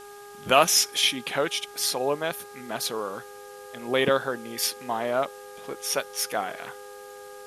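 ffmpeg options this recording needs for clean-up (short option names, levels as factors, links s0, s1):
-af "bandreject=f=408.3:t=h:w=4,bandreject=f=816.6:t=h:w=4,bandreject=f=1224.9:t=h:w=4,bandreject=f=1633.2:t=h:w=4,bandreject=f=510:w=30,afwtdn=0.0028"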